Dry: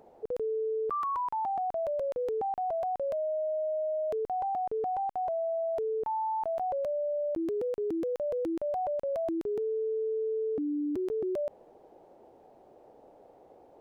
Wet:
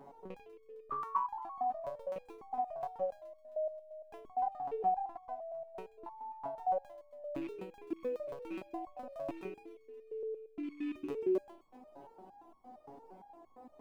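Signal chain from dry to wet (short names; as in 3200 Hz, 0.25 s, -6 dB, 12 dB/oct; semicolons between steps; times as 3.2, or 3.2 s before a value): rattling part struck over -40 dBFS, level -36 dBFS; low shelf 430 Hz +5 dB; in parallel at +2 dB: compressor, threshold -44 dBFS, peak gain reduction 15.5 dB; on the sum: ten-band EQ 250 Hz +6 dB, 500 Hz -8 dB, 1000 Hz +10 dB; thin delay 0.132 s, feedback 68%, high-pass 2000 Hz, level -11 dB; on a send at -12.5 dB: reverb RT60 0.80 s, pre-delay 4 ms; on the sum: stepped resonator 8.7 Hz 140–1100 Hz; gain +5 dB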